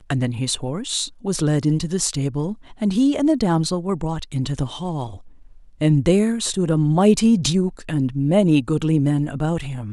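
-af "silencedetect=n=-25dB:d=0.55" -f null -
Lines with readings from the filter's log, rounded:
silence_start: 5.07
silence_end: 5.81 | silence_duration: 0.74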